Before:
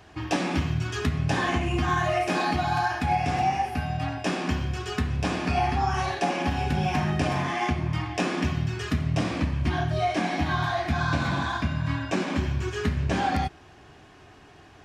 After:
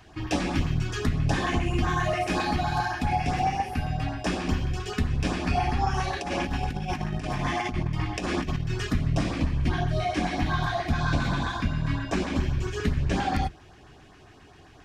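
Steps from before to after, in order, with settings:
sub-octave generator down 2 octaves, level −5 dB
0:06.13–0:08.87: compressor whose output falls as the input rises −27 dBFS, ratio −0.5
auto-filter notch saw up 7.5 Hz 380–3,300 Hz

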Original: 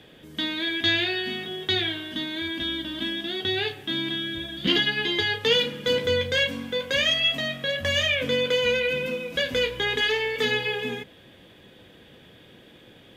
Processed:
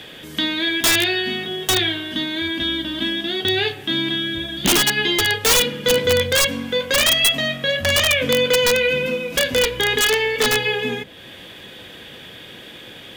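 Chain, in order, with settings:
wrap-around overflow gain 15 dB
one half of a high-frequency compander encoder only
level +6.5 dB

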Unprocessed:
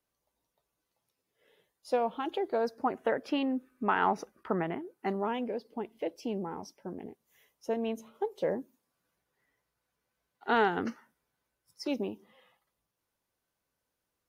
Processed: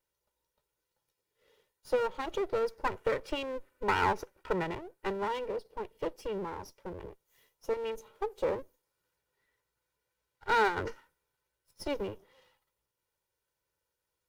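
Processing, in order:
lower of the sound and its delayed copy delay 2.1 ms

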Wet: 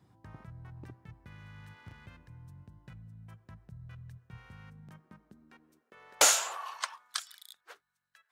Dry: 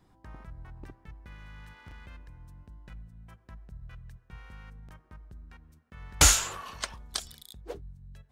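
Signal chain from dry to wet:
high-pass filter sweep 110 Hz → 1,400 Hz, 0:04.56–0:07.21
gain into a clipping stage and back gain 7.5 dB
level −3 dB

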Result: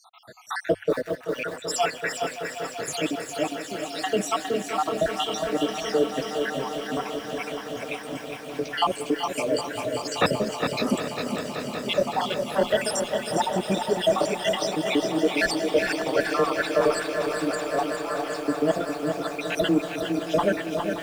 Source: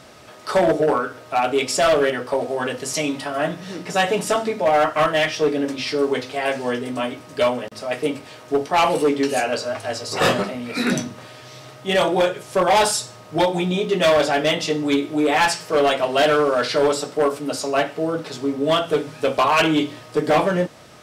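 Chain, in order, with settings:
time-frequency cells dropped at random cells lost 78%
parametric band 82 Hz +7 dB 0.31 octaves
on a send: echo that builds up and dies away 191 ms, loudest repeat 5, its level −14.5 dB
on the sum: frequency shifter +14 Hz
in parallel at −9.5 dB: soft clipping −17.5 dBFS, distortion −13 dB
on the sum: feedback echo at a low word length 409 ms, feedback 35%, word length 7 bits, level −6 dB
level −3 dB

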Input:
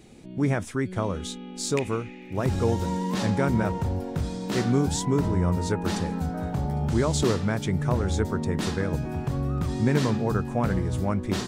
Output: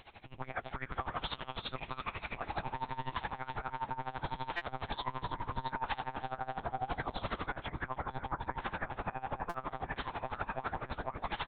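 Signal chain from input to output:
downward compressor 16 to 1, threshold −29 dBFS, peak gain reduction 12.5 dB
low shelf with overshoot 560 Hz −14 dB, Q 1.5
double-tracking delay 12 ms −2.5 dB
delay that swaps between a low-pass and a high-pass 152 ms, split 1,300 Hz, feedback 72%, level −5.5 dB
one-pitch LPC vocoder at 8 kHz 130 Hz
brickwall limiter −30.5 dBFS, peak gain reduction 10 dB
0:07.46–0:09.96: low-pass filter 2,200 Hz 12 dB per octave
buffer that repeats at 0:04.56/0:09.49, samples 256, times 8
tremolo with a sine in dB 12 Hz, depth 19 dB
level +7.5 dB

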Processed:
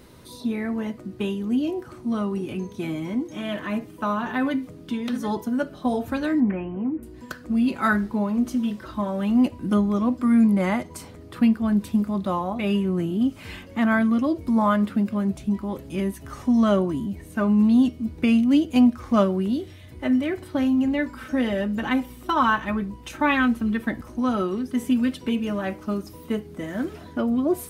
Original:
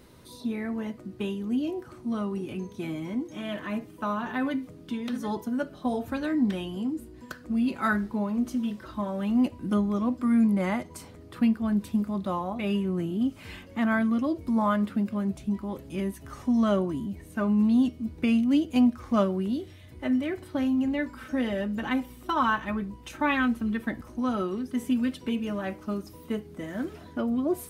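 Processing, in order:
0:06.40–0:07.03: elliptic low-pass filter 2,400 Hz, stop band 40 dB
level +4.5 dB

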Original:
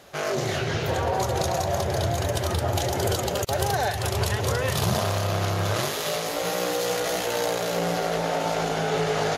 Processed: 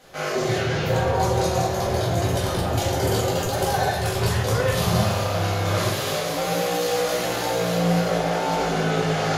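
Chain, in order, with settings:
rectangular room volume 140 cubic metres, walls mixed, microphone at 2 metres
level −5.5 dB

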